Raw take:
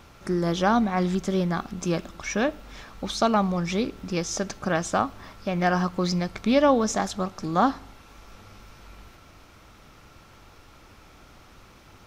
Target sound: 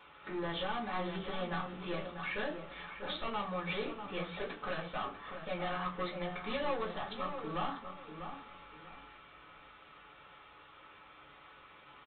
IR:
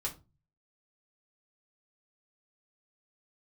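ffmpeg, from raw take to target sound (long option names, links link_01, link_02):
-filter_complex "[0:a]highpass=frequency=940:poles=1,alimiter=limit=-18.5dB:level=0:latency=1:release=302,aresample=8000,volume=33dB,asoftclip=hard,volume=-33dB,aresample=44100,asplit=2[link_01][link_02];[link_02]adelay=644,lowpass=frequency=1700:poles=1,volume=-7.5dB,asplit=2[link_03][link_04];[link_04]adelay=644,lowpass=frequency=1700:poles=1,volume=0.28,asplit=2[link_05][link_06];[link_06]adelay=644,lowpass=frequency=1700:poles=1,volume=0.28[link_07];[link_01][link_03][link_05][link_07]amix=inputs=4:normalize=0[link_08];[1:a]atrim=start_sample=2205[link_09];[link_08][link_09]afir=irnorm=-1:irlink=0,volume=-2dB"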